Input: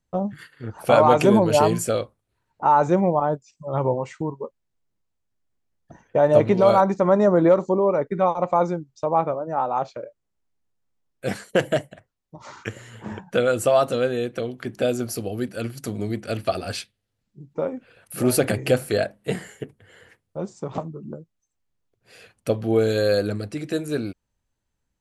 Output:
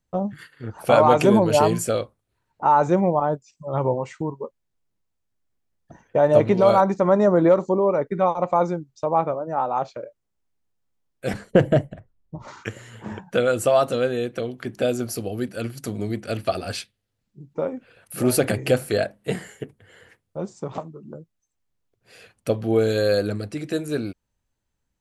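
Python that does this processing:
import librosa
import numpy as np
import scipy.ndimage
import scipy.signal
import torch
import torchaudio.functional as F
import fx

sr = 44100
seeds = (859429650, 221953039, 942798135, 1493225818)

y = fx.tilt_eq(x, sr, slope=-3.5, at=(11.33, 12.48))
y = fx.low_shelf(y, sr, hz=360.0, db=-7.0, at=(20.74, 21.15))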